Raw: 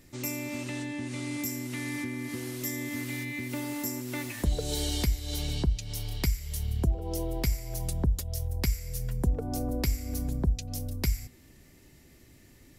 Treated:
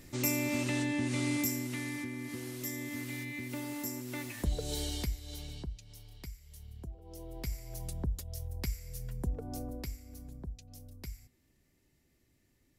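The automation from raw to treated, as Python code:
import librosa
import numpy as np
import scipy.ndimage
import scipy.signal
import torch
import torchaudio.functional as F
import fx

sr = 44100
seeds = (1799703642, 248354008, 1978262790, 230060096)

y = fx.gain(x, sr, db=fx.line((1.28, 3.0), (1.99, -5.0), (4.78, -5.0), (6.06, -18.0), (7.0, -18.0), (7.59, -8.0), (9.59, -8.0), (10.09, -16.0)))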